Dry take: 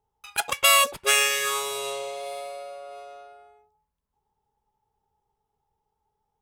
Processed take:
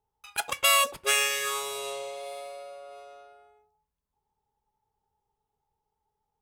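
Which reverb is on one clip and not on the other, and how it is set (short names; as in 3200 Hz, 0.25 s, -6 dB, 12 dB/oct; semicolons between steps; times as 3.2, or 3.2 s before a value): FDN reverb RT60 0.48 s, high-frequency decay 0.55×, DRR 18.5 dB; gain -4 dB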